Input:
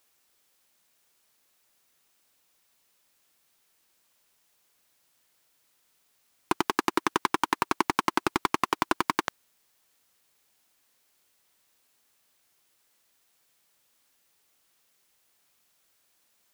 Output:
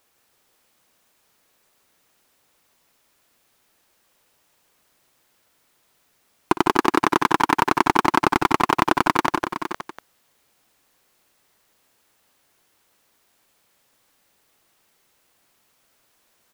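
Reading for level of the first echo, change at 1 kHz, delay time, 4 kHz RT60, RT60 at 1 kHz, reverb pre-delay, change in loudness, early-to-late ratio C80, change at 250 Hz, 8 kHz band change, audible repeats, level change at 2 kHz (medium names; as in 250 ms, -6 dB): -16.5 dB, +8.5 dB, 58 ms, no reverb, no reverb, no reverb, +7.5 dB, no reverb, +9.0 dB, +3.5 dB, 5, +7.5 dB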